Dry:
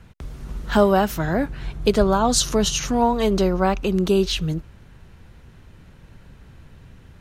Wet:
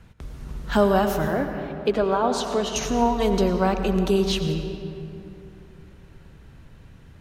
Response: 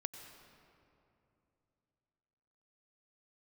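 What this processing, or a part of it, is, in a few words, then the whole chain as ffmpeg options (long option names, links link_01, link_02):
stairwell: -filter_complex "[0:a]asettb=1/sr,asplit=3[link_01][link_02][link_03];[link_01]atrim=end=1.284[link_04];[link_02]atrim=start=1.28:end=2.76,asetpts=PTS-STARTPTS,afade=type=in:duration=0.004:curve=qsin,afade=type=out:start_time=1.476:duration=0.004:curve=qsin,acrossover=split=220 3300:gain=0.141 1 0.2[link_05][link_06][link_07];[link_05][link_06][link_07]amix=inputs=3:normalize=0[link_08];[link_03]atrim=start=2.756[link_09];[link_04][link_08]acrossfade=duration=0.004:curve1=hsin:curve2=qsin[link_10];[link_10][link_09]acrossfade=duration=0.004:curve1=qsin:curve2=hsin[link_11];[1:a]atrim=start_sample=2205[link_12];[link_11][link_12]afir=irnorm=-1:irlink=0"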